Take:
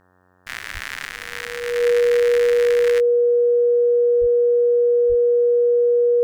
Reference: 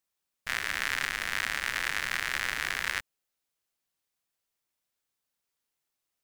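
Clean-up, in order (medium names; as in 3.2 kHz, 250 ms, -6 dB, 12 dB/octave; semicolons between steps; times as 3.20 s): de-hum 91.2 Hz, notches 20; band-stop 480 Hz, Q 30; 0.73–0.85 s: high-pass 140 Hz 24 dB/octave; 4.20–4.32 s: high-pass 140 Hz 24 dB/octave; 5.08–5.20 s: high-pass 140 Hz 24 dB/octave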